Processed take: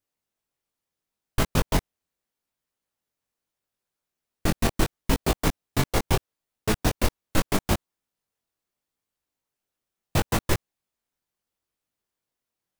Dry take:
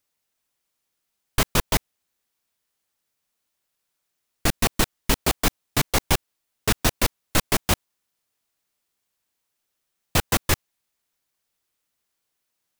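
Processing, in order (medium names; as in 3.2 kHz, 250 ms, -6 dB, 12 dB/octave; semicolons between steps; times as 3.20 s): tilt shelf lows +4 dB, about 1.1 kHz; harmonic-percussive split harmonic -6 dB; chorus 0.76 Hz, delay 18 ms, depth 4.8 ms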